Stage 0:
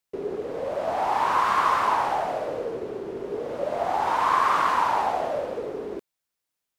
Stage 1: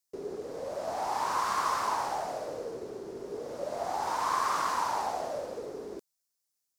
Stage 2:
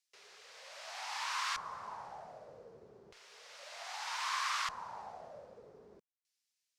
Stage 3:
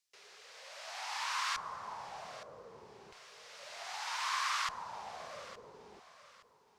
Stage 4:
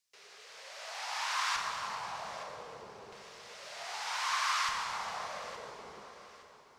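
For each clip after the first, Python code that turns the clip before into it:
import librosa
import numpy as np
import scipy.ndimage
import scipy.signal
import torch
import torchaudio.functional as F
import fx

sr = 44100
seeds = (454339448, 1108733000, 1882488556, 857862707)

y1 = fx.high_shelf_res(x, sr, hz=4000.0, db=9.0, q=1.5)
y1 = F.gain(torch.from_numpy(y1), -7.5).numpy()
y2 = fx.filter_lfo_bandpass(y1, sr, shape='square', hz=0.32, low_hz=230.0, high_hz=2600.0, q=1.3)
y2 = fx.tone_stack(y2, sr, knobs='10-0-10')
y2 = F.gain(torch.from_numpy(y2), 9.0).numpy()
y3 = fx.echo_feedback(y2, sr, ms=868, feedback_pct=32, wet_db=-16.0)
y3 = F.gain(torch.from_numpy(y3), 1.0).numpy()
y4 = fx.rev_plate(y3, sr, seeds[0], rt60_s=3.5, hf_ratio=0.85, predelay_ms=0, drr_db=1.0)
y4 = F.gain(torch.from_numpy(y4), 1.0).numpy()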